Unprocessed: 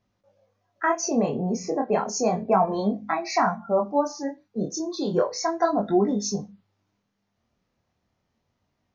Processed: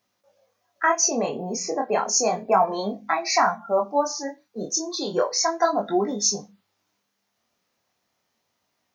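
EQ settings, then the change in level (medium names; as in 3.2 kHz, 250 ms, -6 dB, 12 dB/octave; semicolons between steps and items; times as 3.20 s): high-pass 640 Hz 6 dB/octave; treble shelf 6 kHz +10.5 dB; +4.0 dB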